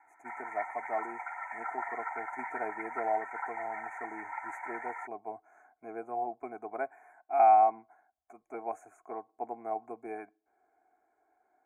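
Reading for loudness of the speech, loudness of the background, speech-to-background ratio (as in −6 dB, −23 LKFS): −33.5 LKFS, −40.0 LKFS, 6.5 dB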